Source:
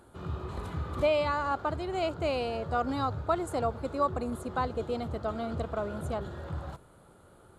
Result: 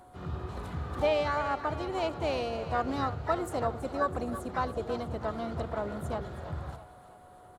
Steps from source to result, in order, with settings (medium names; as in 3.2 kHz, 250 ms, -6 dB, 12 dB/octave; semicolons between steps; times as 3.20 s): two-band feedback delay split 500 Hz, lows 81 ms, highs 327 ms, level -13 dB; whistle 730 Hz -52 dBFS; harmony voices -5 st -15 dB, +5 st -13 dB, +7 st -16 dB; trim -1.5 dB